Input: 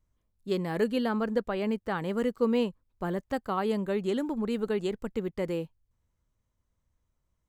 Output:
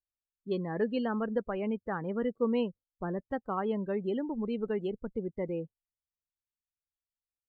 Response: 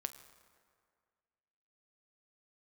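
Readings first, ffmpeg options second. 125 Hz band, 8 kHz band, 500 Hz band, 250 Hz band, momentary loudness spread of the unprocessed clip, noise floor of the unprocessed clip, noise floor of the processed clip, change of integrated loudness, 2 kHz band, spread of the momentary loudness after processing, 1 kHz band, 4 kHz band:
−3.0 dB, can't be measured, −3.0 dB, −3.0 dB, 7 LU, −79 dBFS, below −85 dBFS, −3.0 dB, −4.5 dB, 7 LU, −3.5 dB, −8.0 dB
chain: -af "afftdn=noise_reduction=29:noise_floor=-37,volume=-3dB"

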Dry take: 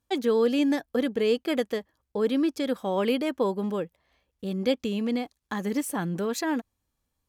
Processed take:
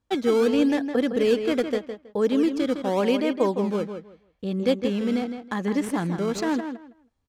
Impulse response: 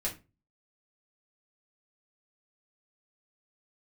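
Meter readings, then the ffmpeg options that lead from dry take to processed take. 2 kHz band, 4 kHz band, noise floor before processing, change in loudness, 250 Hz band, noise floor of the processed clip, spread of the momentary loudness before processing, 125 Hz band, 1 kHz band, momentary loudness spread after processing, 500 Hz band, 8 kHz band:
+2.0 dB, +1.0 dB, −80 dBFS, +3.0 dB, +3.5 dB, −71 dBFS, 10 LU, +3.5 dB, +2.5 dB, 9 LU, +3.0 dB, −1.5 dB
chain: -filter_complex "[0:a]asplit=2[link_01][link_02];[link_02]acrusher=samples=14:mix=1:aa=0.000001:lfo=1:lforange=22.4:lforate=0.84,volume=-8dB[link_03];[link_01][link_03]amix=inputs=2:normalize=0,adynamicsmooth=sensitivity=4:basefreq=7200,asplit=2[link_04][link_05];[link_05]adelay=161,lowpass=frequency=3800:poles=1,volume=-8dB,asplit=2[link_06][link_07];[link_07]adelay=161,lowpass=frequency=3800:poles=1,volume=0.2,asplit=2[link_08][link_09];[link_09]adelay=161,lowpass=frequency=3800:poles=1,volume=0.2[link_10];[link_04][link_06][link_08][link_10]amix=inputs=4:normalize=0"

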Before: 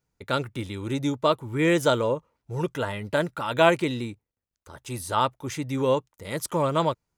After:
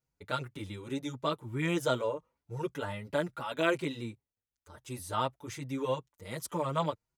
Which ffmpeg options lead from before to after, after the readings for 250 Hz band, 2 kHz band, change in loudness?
−8.5 dB, −8.0 dB, −9.0 dB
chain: -filter_complex "[0:a]asplit=2[link_01][link_02];[link_02]adelay=6,afreqshift=2.7[link_03];[link_01][link_03]amix=inputs=2:normalize=1,volume=-5dB"

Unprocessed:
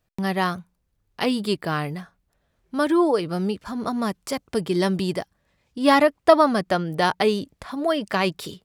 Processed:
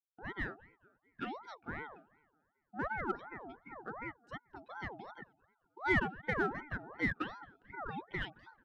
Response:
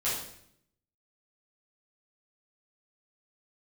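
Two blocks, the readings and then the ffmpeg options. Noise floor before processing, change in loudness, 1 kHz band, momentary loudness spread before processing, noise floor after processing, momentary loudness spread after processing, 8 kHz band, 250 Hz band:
−72 dBFS, −16.5 dB, −17.5 dB, 14 LU, −82 dBFS, 16 LU, below −30 dB, −20.0 dB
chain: -filter_complex "[0:a]afftdn=noise_reduction=19:noise_floor=-30,lowshelf=frequency=550:width_type=q:width=3:gain=-8,asplit=2[link_01][link_02];[link_02]adelay=219,lowpass=frequency=2300:poles=1,volume=-23dB,asplit=2[link_03][link_04];[link_04]adelay=219,lowpass=frequency=2300:poles=1,volume=0.53,asplit=2[link_05][link_06];[link_06]adelay=219,lowpass=frequency=2300:poles=1,volume=0.53,asplit=2[link_07][link_08];[link_08]adelay=219,lowpass=frequency=2300:poles=1,volume=0.53[link_09];[link_03][link_05][link_07][link_09]amix=inputs=4:normalize=0[link_10];[link_01][link_10]amix=inputs=2:normalize=0,adynamicequalizer=threshold=0.00891:dfrequency=130:dqfactor=0.77:tfrequency=130:tqfactor=0.77:attack=5:release=100:ratio=0.375:range=3:mode=boostabove:tftype=bell,asplit=3[link_11][link_12][link_13];[link_11]bandpass=frequency=300:width_type=q:width=8,volume=0dB[link_14];[link_12]bandpass=frequency=870:width_type=q:width=8,volume=-6dB[link_15];[link_13]bandpass=frequency=2240:width_type=q:width=8,volume=-9dB[link_16];[link_14][link_15][link_16]amix=inputs=3:normalize=0,asplit=2[link_17][link_18];[link_18]asoftclip=type=hard:threshold=-31dB,volume=-8dB[link_19];[link_17][link_19]amix=inputs=2:normalize=0,aeval=exprs='val(0)*sin(2*PI*840*n/s+840*0.45/2.7*sin(2*PI*2.7*n/s))':channel_layout=same,volume=-3.5dB"

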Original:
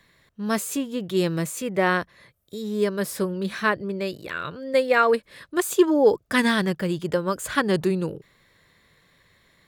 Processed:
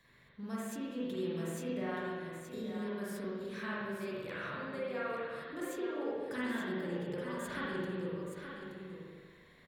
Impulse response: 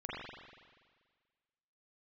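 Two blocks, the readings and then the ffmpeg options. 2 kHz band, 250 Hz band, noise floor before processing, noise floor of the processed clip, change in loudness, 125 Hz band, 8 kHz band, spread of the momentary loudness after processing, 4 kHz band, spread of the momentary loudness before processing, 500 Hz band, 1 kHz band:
−15.0 dB, −13.5 dB, −62 dBFS, −61 dBFS, −15.5 dB, −13.5 dB, −19.0 dB, 9 LU, −17.0 dB, 12 LU, −15.5 dB, −16.5 dB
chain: -filter_complex "[0:a]acompressor=threshold=-35dB:ratio=6,aecho=1:1:874:0.398[link_01];[1:a]atrim=start_sample=2205[link_02];[link_01][link_02]afir=irnorm=-1:irlink=0,volume=-4dB"

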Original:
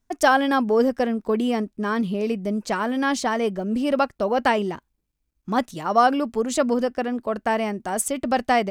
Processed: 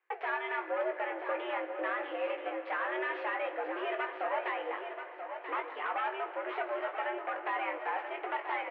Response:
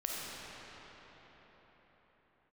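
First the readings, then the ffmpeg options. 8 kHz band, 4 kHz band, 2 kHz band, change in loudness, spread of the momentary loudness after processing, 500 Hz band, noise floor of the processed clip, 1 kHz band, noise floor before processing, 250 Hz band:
below −40 dB, −14.5 dB, −7.5 dB, −12.5 dB, 4 LU, −12.5 dB, −46 dBFS, −11.5 dB, −74 dBFS, −23.0 dB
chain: -filter_complex "[0:a]tiltshelf=frequency=830:gain=-9,acompressor=threshold=-33dB:ratio=3,aeval=exprs='0.133*sin(PI/2*3.16*val(0)/0.133)':channel_layout=same,aeval=exprs='0.133*(cos(1*acos(clip(val(0)/0.133,-1,1)))-cos(1*PI/2))+0.0133*(cos(3*acos(clip(val(0)/0.133,-1,1)))-cos(3*PI/2))':channel_layout=same,flanger=delay=7.9:depth=8.2:regen=85:speed=1.4:shape=sinusoidal,aeval=exprs='clip(val(0),-1,0.0282)':channel_layout=same,asplit=2[link_01][link_02];[link_02]adelay=19,volume=-6dB[link_03];[link_01][link_03]amix=inputs=2:normalize=0,aecho=1:1:984|1968|2952:0.376|0.094|0.0235,asplit=2[link_04][link_05];[1:a]atrim=start_sample=2205[link_06];[link_05][link_06]afir=irnorm=-1:irlink=0,volume=-12dB[link_07];[link_04][link_07]amix=inputs=2:normalize=0,highpass=frequency=290:width_type=q:width=0.5412,highpass=frequency=290:width_type=q:width=1.307,lowpass=frequency=2400:width_type=q:width=0.5176,lowpass=frequency=2400:width_type=q:width=0.7071,lowpass=frequency=2400:width_type=q:width=1.932,afreqshift=110,volume=-6.5dB"

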